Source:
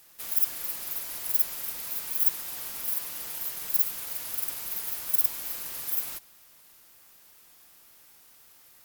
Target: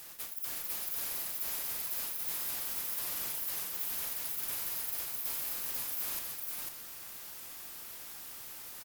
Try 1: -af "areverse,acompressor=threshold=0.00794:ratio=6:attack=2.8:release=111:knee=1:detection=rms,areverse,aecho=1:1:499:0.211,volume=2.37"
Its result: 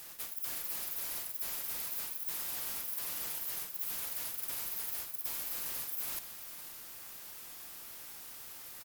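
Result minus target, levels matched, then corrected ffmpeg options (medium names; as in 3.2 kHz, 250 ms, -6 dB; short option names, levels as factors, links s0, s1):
echo-to-direct -11.5 dB
-af "areverse,acompressor=threshold=0.00794:ratio=6:attack=2.8:release=111:knee=1:detection=rms,areverse,aecho=1:1:499:0.794,volume=2.37"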